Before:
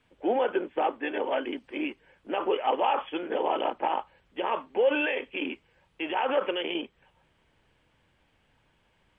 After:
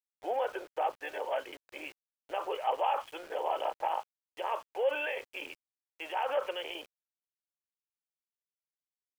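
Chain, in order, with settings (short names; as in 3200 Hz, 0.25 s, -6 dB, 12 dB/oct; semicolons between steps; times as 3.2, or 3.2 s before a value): ladder high-pass 460 Hz, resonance 30%; sample gate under -50 dBFS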